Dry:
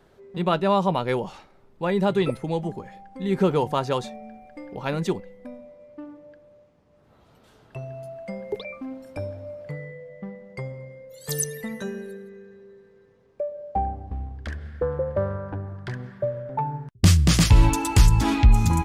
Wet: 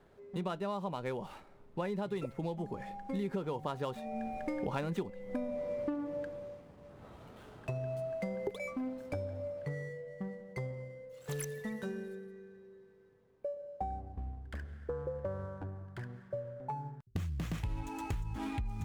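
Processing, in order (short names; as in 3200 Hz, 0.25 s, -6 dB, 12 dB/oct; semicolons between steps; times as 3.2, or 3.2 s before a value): median filter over 9 samples; Doppler pass-by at 5.46, 7 m/s, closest 3.7 m; compressor 10:1, threshold -48 dBFS, peak gain reduction 26 dB; gain +15 dB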